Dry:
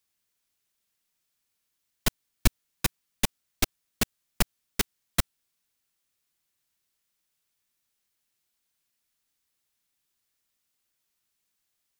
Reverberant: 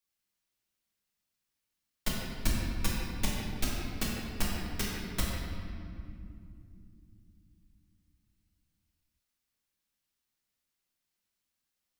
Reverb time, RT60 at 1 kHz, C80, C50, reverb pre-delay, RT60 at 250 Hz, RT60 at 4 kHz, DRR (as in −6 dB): 2.7 s, 2.3 s, 0.0 dB, −1.5 dB, 3 ms, 4.6 s, 1.6 s, −5.5 dB